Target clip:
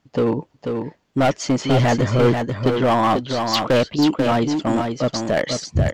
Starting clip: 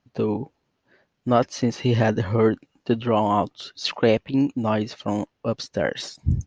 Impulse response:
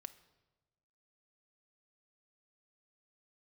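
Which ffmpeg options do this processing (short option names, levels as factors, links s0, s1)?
-filter_complex "[0:a]asoftclip=type=hard:threshold=0.126,asplit=2[s0][s1];[s1]aecho=0:1:532:0.531[s2];[s0][s2]amix=inputs=2:normalize=0,asetrate=48000,aresample=44100,volume=1.88"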